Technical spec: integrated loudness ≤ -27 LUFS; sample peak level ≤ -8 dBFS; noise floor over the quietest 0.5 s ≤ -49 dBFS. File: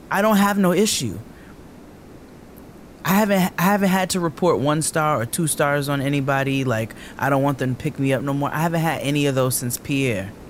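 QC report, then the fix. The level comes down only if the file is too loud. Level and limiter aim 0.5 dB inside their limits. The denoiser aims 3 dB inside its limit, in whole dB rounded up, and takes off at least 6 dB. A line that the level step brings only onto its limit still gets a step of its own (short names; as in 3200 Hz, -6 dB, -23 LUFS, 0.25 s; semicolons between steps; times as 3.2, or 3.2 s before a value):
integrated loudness -20.5 LUFS: fail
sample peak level -6.5 dBFS: fail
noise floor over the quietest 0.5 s -42 dBFS: fail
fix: denoiser 6 dB, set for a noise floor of -42 dBFS; gain -7 dB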